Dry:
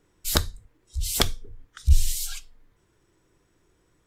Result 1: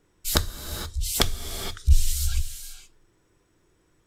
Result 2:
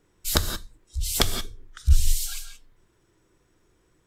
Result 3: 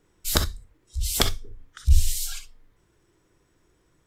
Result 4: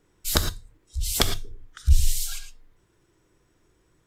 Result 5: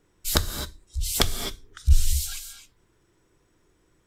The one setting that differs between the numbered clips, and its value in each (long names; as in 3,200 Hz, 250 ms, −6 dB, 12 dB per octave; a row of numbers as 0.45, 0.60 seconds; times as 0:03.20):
reverb whose tail is shaped and stops, gate: 500, 200, 80, 130, 290 milliseconds